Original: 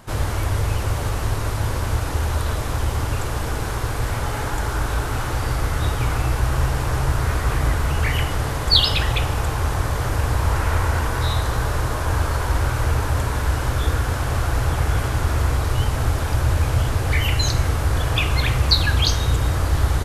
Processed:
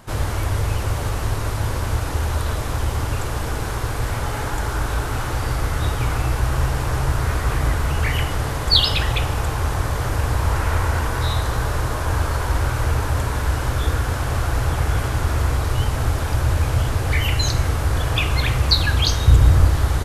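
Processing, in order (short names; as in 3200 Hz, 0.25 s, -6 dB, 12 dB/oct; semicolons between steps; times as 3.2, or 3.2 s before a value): 19.27–19.7 low shelf 210 Hz +9 dB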